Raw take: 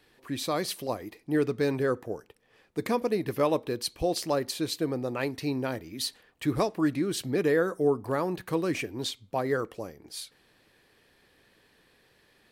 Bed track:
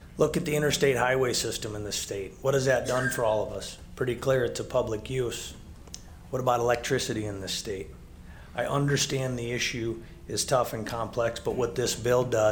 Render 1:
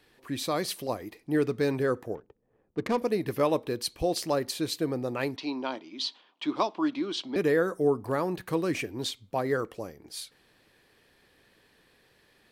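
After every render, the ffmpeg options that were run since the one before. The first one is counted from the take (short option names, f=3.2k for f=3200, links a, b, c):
-filter_complex "[0:a]asettb=1/sr,asplit=3[a][b][c];[a]atrim=end=2.154[d];[b]atrim=start=2.15:end=2.98,asetpts=PTS-STARTPTS,afade=t=in:d=0.004:c=qsin,afade=t=out:st=0.826:d=0.004:c=qsin,adynamicsmooth=sensitivity=7:basefreq=560[e];[c]atrim=start=2.976[f];[d][e]acrossfade=d=0.004:c1=hsin:c2=qsin[g];[g][f]acrossfade=d=0.004:c1=qsin:c2=hsin,asettb=1/sr,asplit=3[h][i][j];[h]atrim=end=5.364[k];[i]atrim=start=5.36:end=7.36,asetpts=PTS-STARTPTS,afade=t=in:d=0.004:c=qsin,afade=t=out:st=1.996:d=0.004:c=qsin,highpass=f=250:w=0.5412,highpass=f=250:w=1.3066,equalizer=f=460:t=q:w=4:g=-10,equalizer=f=980:t=q:w=4:g=8,equalizer=f=1.8k:t=q:w=4:g=-8,equalizer=f=3.3k:t=q:w=4:g=8,lowpass=f=5.5k:w=0.5412,lowpass=f=5.5k:w=1.3066[l];[j]atrim=start=7.356[m];[k][l]acrossfade=d=0.004:c1=hsin:c2=qsin[n];[n][m]acrossfade=d=0.004:c1=qsin:c2=hsin"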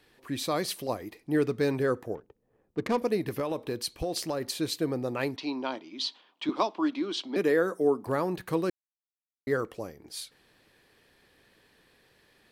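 -filter_complex "[0:a]asettb=1/sr,asplit=3[a][b][c];[a]atrim=end=3.274[d];[b]atrim=start=3.27:end=4.46,asetpts=PTS-STARTPTS,afade=t=in:d=0.004:c=qsin,afade=t=out:st=1.186:d=0.004:c=qsin,acompressor=threshold=-26dB:ratio=6:attack=3.2:release=140:knee=1:detection=peak[e];[c]atrim=start=4.456[f];[d][e]acrossfade=d=0.004:c1=hsin:c2=qsin[g];[g][f]acrossfade=d=0.004:c1=qsin:c2=hsin,asettb=1/sr,asplit=3[h][i][j];[h]atrim=end=6.494[k];[i]atrim=start=6.49:end=8.07,asetpts=PTS-STARTPTS,afade=t=in:d=0.004:c=qsin,afade=t=out:st=1.576:d=0.004:c=qsin,highpass=f=180:w=0.5412,highpass=f=180:w=1.3066[l];[j]atrim=start=8.066[m];[k][l]acrossfade=d=0.004:c1=hsin:c2=qsin[n];[n][m]acrossfade=d=0.004:c1=qsin:c2=hsin,asplit=3[o][p][q];[o]atrim=end=8.7,asetpts=PTS-STARTPTS,afade=t=out:st=8.696:d=0.004:c=hsin[r];[p]atrim=start=8.7:end=9.47,asetpts=PTS-STARTPTS,volume=0[s];[q]atrim=start=9.47,asetpts=PTS-STARTPTS,afade=t=in:d=0.004:c=hsin[t];[r][s][t]concat=n=3:v=0:a=1"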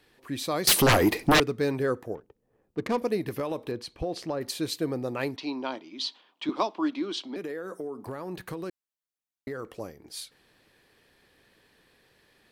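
-filter_complex "[0:a]asettb=1/sr,asplit=3[a][b][c];[a]atrim=end=0.674[d];[b]atrim=start=0.67:end=1.4,asetpts=PTS-STARTPTS,afade=t=in:d=0.004:c=qsin,afade=t=out:st=0.726:d=0.004:c=qsin,aeval=exprs='0.178*sin(PI/2*7.08*val(0)/0.178)':c=same[e];[c]atrim=start=1.396[f];[d][e]acrossfade=d=0.004:c1=hsin:c2=qsin[g];[g][f]acrossfade=d=0.004:c1=qsin:c2=hsin,asettb=1/sr,asplit=3[h][i][j];[h]atrim=end=3.714[k];[i]atrim=start=3.71:end=4.41,asetpts=PTS-STARTPTS,afade=t=in:d=0.004:c=qsin,afade=t=out:st=0.696:d=0.004:c=qsin,aemphasis=mode=reproduction:type=75fm[l];[j]atrim=start=4.406[m];[k][l]acrossfade=d=0.004:c1=hsin:c2=qsin[n];[n][m]acrossfade=d=0.004:c1=qsin:c2=hsin,asettb=1/sr,asplit=3[o][p][q];[o]atrim=end=7.184[r];[p]atrim=start=7.18:end=9.8,asetpts=PTS-STARTPTS,afade=t=in:d=0.004:c=qsin,afade=t=out:st=2.616:d=0.004:c=qsin,acompressor=threshold=-31dB:ratio=12:attack=3.2:release=140:knee=1:detection=peak[s];[q]atrim=start=9.796[t];[r][s]acrossfade=d=0.004:c1=hsin:c2=qsin[u];[u][t]acrossfade=d=0.004:c1=qsin:c2=hsin"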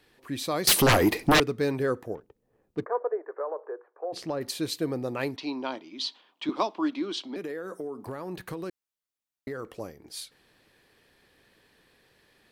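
-filter_complex "[0:a]asplit=3[a][b][c];[a]afade=t=out:st=2.84:d=0.02[d];[b]asuperpass=centerf=810:order=12:qfactor=0.66,afade=t=in:st=2.84:d=0.02,afade=t=out:st=4.12:d=0.02[e];[c]afade=t=in:st=4.12:d=0.02[f];[d][e][f]amix=inputs=3:normalize=0"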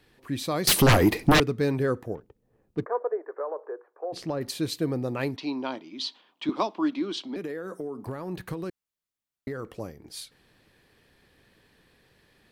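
-af "bass=f=250:g=6,treble=f=4k:g=-1"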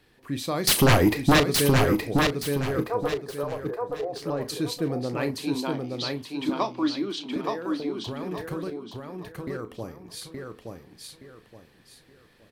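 -filter_complex "[0:a]asplit=2[a][b];[b]adelay=35,volume=-12dB[c];[a][c]amix=inputs=2:normalize=0,asplit=2[d][e];[e]aecho=0:1:871|1742|2613|3484:0.668|0.207|0.0642|0.0199[f];[d][f]amix=inputs=2:normalize=0"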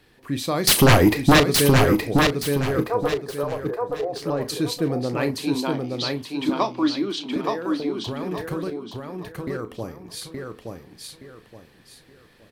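-af "volume=4dB"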